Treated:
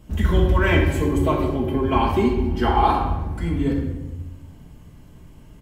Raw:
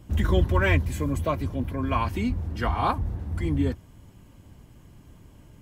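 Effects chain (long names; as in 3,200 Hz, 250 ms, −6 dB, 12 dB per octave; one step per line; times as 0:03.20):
0:00.72–0:02.86: hollow resonant body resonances 370/820/3,100 Hz, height 17 dB, ringing for 75 ms
far-end echo of a speakerphone 110 ms, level −14 dB
rectangular room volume 530 cubic metres, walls mixed, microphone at 1.5 metres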